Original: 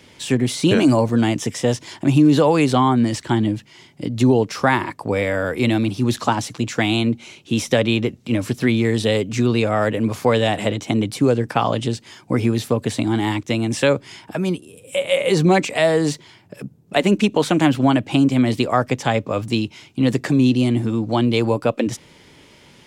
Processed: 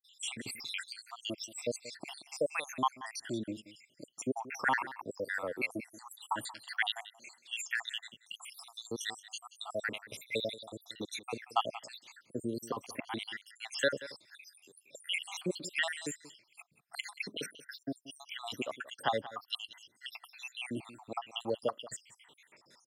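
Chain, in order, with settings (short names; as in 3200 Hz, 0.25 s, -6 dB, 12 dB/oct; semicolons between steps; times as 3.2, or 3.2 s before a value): random spectral dropouts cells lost 80%; HPF 1200 Hz 6 dB/oct; echo 0.181 s -16.5 dB; gain -4 dB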